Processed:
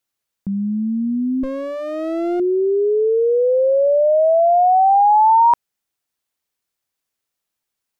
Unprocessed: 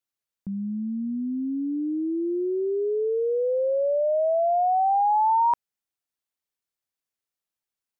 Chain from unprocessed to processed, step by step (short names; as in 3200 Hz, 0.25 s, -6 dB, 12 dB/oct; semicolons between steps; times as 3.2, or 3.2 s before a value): 1.43–2.4 minimum comb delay 5.1 ms; 3.87–4.95 HPF 110 Hz; gain +8.5 dB